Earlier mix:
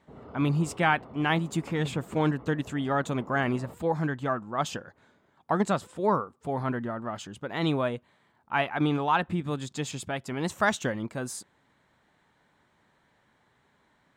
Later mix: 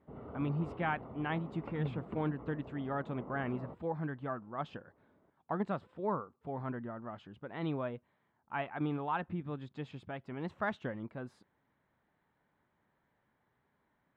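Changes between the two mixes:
speech -8.5 dB; master: add air absorption 400 m

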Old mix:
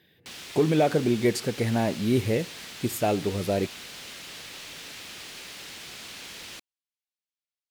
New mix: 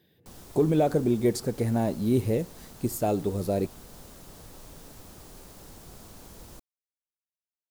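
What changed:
background: remove weighting filter D; master: add bell 2200 Hz -10 dB 1.8 oct

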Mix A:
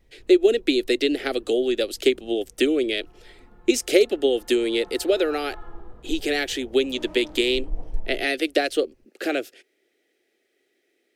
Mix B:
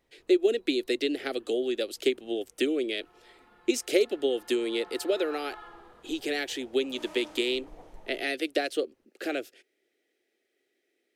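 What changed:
speech -6.5 dB; background: add tilt +4.5 dB/oct

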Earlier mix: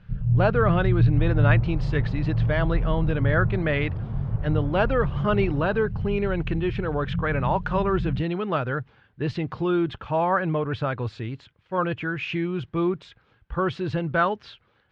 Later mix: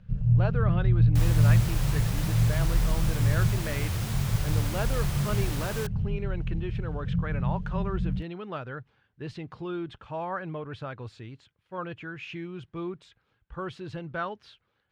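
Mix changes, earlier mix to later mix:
speech -11.0 dB; second sound: remove Gaussian blur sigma 7.6 samples; master: remove air absorption 110 m

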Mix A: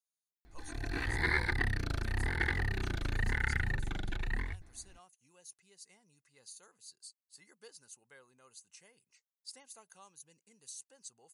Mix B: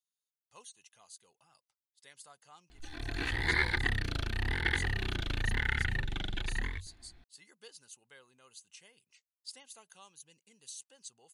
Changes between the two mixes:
background: entry +2.25 s; master: add bell 3200 Hz +10.5 dB 0.66 oct

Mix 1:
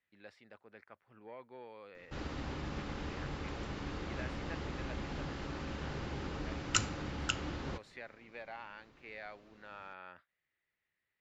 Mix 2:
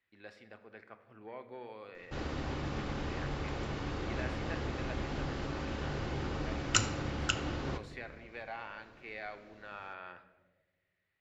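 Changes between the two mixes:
background: add bell 570 Hz +3 dB; reverb: on, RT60 1.3 s

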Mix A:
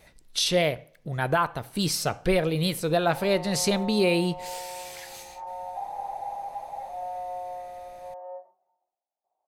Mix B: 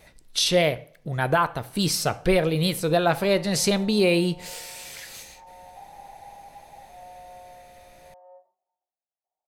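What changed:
speech: send +11.5 dB; background -10.5 dB

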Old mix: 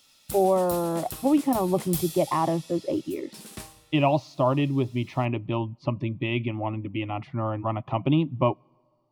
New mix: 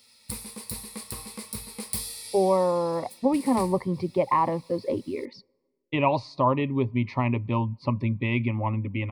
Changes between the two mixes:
speech: entry +2.00 s; master: add ripple EQ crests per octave 0.92, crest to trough 11 dB

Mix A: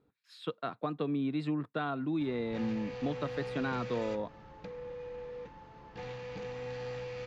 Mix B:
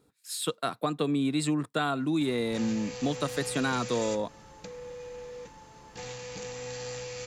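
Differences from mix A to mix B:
speech +4.5 dB; master: remove air absorption 310 m

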